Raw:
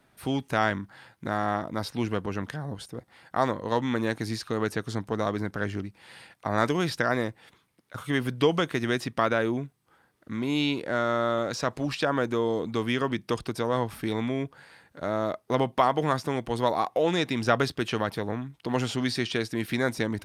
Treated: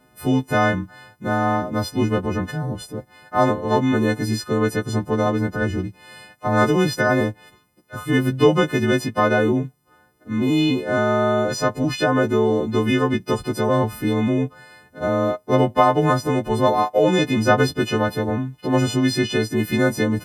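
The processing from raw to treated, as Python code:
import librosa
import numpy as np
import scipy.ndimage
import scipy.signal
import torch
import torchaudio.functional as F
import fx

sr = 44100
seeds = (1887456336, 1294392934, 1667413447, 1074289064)

y = fx.freq_snap(x, sr, grid_st=3)
y = fx.tilt_shelf(y, sr, db=7.5, hz=1200.0)
y = y * librosa.db_to_amplitude(3.0)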